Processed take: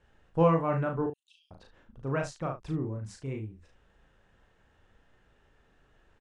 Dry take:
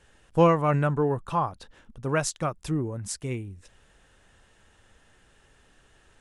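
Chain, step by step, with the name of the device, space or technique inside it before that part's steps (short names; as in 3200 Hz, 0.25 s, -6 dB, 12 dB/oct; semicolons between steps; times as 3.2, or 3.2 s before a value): 1.06–1.51 steep high-pass 2800 Hz 72 dB/oct; through cloth (LPF 7000 Hz 12 dB/oct; high shelf 3000 Hz -12 dB); early reflections 37 ms -3.5 dB, 73 ms -12.5 dB; gain -5.5 dB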